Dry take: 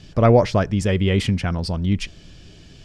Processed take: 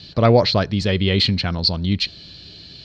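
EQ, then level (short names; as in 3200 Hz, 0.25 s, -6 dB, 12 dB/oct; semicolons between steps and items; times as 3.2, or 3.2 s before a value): HPF 62 Hz; synth low-pass 4200 Hz, resonance Q 15; 0.0 dB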